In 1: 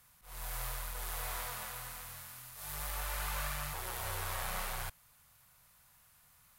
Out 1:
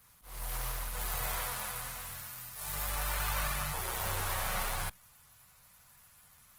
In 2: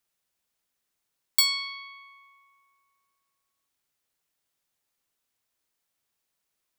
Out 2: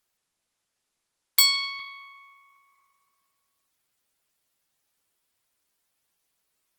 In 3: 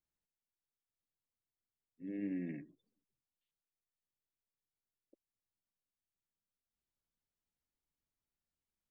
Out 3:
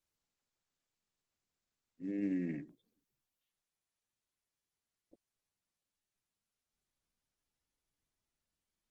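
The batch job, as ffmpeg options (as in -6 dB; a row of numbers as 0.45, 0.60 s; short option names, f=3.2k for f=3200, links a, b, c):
-af "acrusher=bits=9:mode=log:mix=0:aa=0.000001,volume=4dB" -ar 48000 -c:a libopus -b:a 16k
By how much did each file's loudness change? +4.0, +3.5, +4.0 LU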